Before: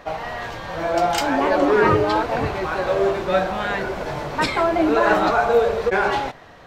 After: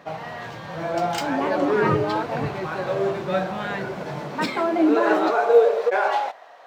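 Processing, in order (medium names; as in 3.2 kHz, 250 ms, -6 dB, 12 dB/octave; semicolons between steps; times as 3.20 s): median filter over 3 samples; high-pass sweep 140 Hz -> 680 Hz, 3.91–6.19 s; trim -5 dB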